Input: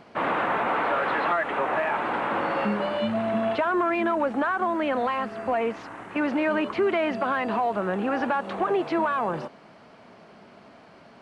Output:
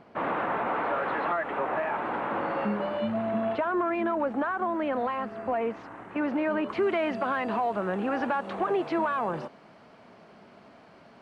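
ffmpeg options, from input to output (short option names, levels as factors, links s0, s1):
-af "asetnsamples=n=441:p=0,asendcmd='6.69 highshelf g -2',highshelf=f=2600:g=-10.5,volume=0.75"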